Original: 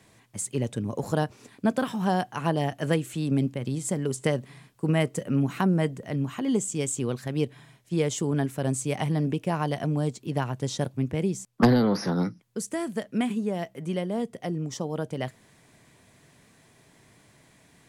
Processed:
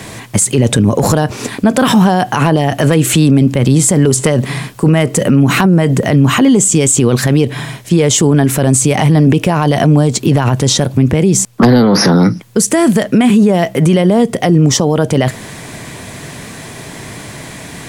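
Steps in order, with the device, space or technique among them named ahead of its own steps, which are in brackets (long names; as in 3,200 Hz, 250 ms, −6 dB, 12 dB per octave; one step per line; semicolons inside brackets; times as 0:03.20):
loud club master (downward compressor 2 to 1, threshold −27 dBFS, peak gain reduction 7.5 dB; hard clipping −18.5 dBFS, distortion −30 dB; boost into a limiter +30 dB)
level −1 dB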